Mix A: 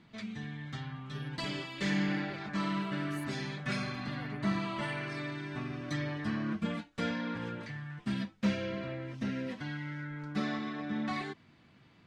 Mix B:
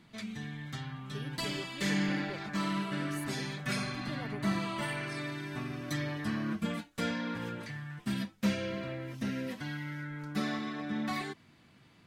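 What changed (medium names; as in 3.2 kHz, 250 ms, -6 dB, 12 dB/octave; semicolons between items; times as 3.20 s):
speech +7.0 dB; background: remove distance through air 88 m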